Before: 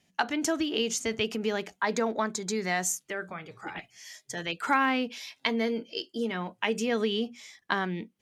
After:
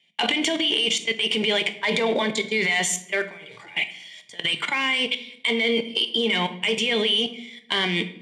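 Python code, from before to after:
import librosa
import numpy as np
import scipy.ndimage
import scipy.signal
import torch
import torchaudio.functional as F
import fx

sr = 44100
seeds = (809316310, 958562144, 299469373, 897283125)

y = fx.band_shelf(x, sr, hz=2800.0, db=16.0, octaves=1.1)
y = fx.notch(y, sr, hz=760.0, q=12.0)
y = fx.transient(y, sr, attack_db=-9, sustain_db=8)
y = fx.rider(y, sr, range_db=4, speed_s=0.5)
y = fx.leveller(y, sr, passes=2)
y = fx.level_steps(y, sr, step_db=21)
y = fx.cabinet(y, sr, low_hz=170.0, low_slope=12, high_hz=9700.0, hz=(280.0, 1600.0, 6300.0), db=(-6, -4, -5))
y = fx.notch_comb(y, sr, f0_hz=1300.0)
y = fx.room_shoebox(y, sr, seeds[0], volume_m3=190.0, walls='mixed', distance_m=0.35)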